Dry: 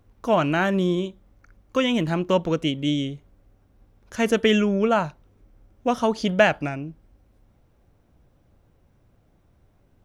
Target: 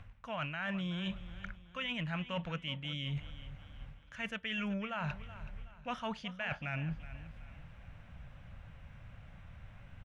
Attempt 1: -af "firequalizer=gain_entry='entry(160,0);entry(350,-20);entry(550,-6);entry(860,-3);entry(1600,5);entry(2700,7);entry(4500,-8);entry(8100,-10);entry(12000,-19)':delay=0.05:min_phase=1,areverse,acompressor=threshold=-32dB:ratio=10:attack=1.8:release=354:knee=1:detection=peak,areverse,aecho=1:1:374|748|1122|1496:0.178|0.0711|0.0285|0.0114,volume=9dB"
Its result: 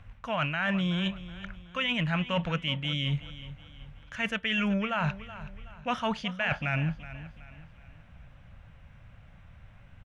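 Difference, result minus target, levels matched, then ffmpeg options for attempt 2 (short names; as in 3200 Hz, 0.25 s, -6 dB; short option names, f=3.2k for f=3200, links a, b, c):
compressor: peak gain reduction -9 dB
-af "firequalizer=gain_entry='entry(160,0);entry(350,-20);entry(550,-6);entry(860,-3);entry(1600,5);entry(2700,7);entry(4500,-8);entry(8100,-10);entry(12000,-19)':delay=0.05:min_phase=1,areverse,acompressor=threshold=-42dB:ratio=10:attack=1.8:release=354:knee=1:detection=peak,areverse,aecho=1:1:374|748|1122|1496:0.178|0.0711|0.0285|0.0114,volume=9dB"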